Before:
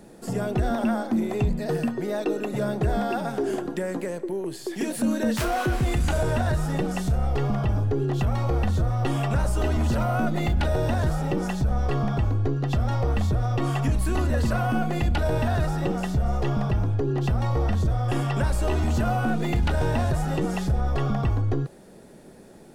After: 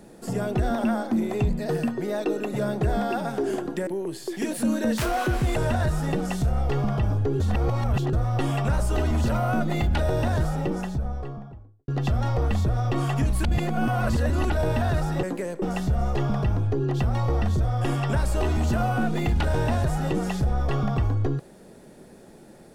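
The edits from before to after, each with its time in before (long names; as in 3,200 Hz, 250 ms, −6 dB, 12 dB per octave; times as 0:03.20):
0:03.87–0:04.26: move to 0:15.89
0:05.95–0:06.22: remove
0:08.06–0:08.79: reverse
0:11.01–0:12.54: fade out and dull
0:14.10–0:15.16: reverse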